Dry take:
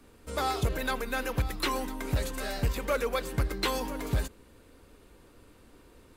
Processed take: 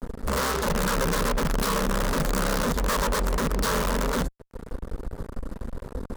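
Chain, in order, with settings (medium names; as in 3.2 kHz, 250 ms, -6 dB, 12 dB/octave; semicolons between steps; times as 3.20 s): tilt EQ -3 dB/octave; compression 2:1, threshold -41 dBFS, peak gain reduction 16 dB; integer overflow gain 30.5 dB; static phaser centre 490 Hz, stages 8; fuzz box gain 43 dB, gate -47 dBFS; trim -7.5 dB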